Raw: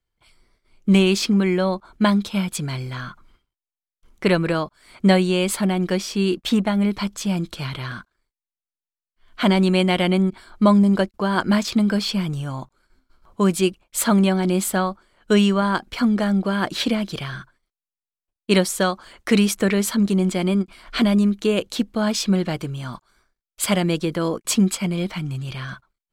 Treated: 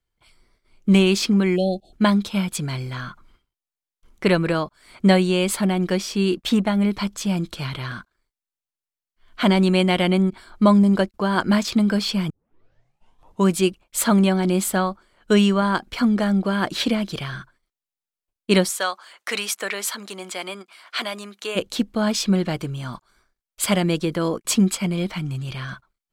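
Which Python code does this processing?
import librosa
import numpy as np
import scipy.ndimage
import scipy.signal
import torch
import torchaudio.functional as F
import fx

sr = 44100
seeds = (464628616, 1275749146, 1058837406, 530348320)

y = fx.spec_erase(x, sr, start_s=1.56, length_s=0.37, low_hz=810.0, high_hz=2500.0)
y = fx.highpass(y, sr, hz=750.0, slope=12, at=(18.69, 21.55), fade=0.02)
y = fx.edit(y, sr, fx.tape_start(start_s=12.3, length_s=1.16), tone=tone)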